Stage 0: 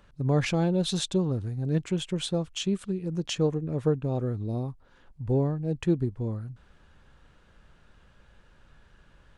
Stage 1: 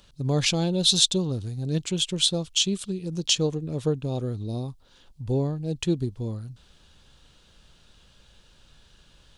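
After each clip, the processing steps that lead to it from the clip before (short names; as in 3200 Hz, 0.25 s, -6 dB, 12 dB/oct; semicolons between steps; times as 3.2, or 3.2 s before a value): resonant high shelf 2600 Hz +11 dB, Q 1.5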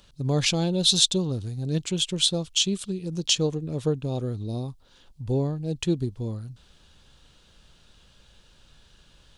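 nothing audible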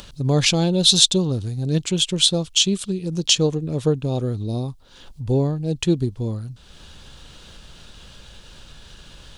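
upward compressor, threshold -39 dBFS; gain +5.5 dB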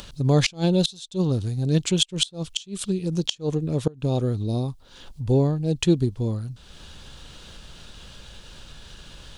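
flipped gate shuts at -8 dBFS, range -26 dB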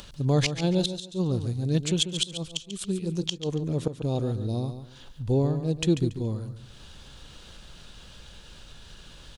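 feedback echo 0.141 s, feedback 24%, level -10 dB; gain -4 dB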